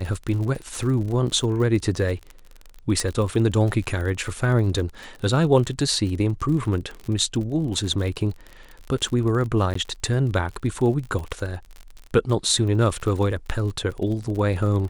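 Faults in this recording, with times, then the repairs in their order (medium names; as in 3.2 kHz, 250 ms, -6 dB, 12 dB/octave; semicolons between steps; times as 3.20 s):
crackle 50 per s -30 dBFS
3.00 s: pop -11 dBFS
9.74–9.75 s: dropout 14 ms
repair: de-click; interpolate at 9.74 s, 14 ms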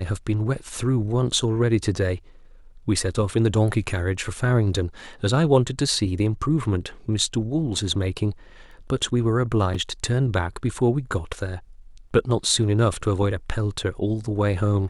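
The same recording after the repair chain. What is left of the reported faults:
nothing left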